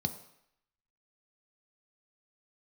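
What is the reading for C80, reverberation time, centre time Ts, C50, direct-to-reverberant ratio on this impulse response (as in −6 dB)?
14.5 dB, 0.75 s, 9 ms, 12.5 dB, 7.0 dB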